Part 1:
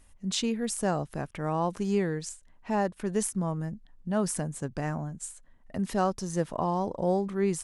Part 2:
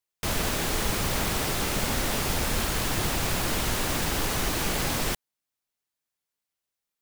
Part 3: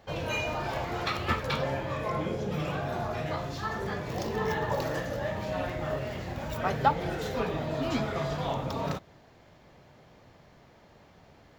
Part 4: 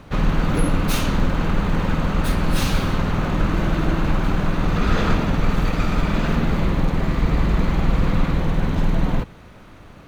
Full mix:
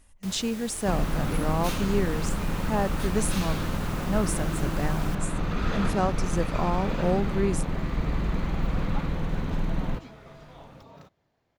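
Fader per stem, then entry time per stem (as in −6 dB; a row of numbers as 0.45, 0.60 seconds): +0.5, −15.0, −17.5, −8.5 decibels; 0.00, 0.00, 2.10, 0.75 seconds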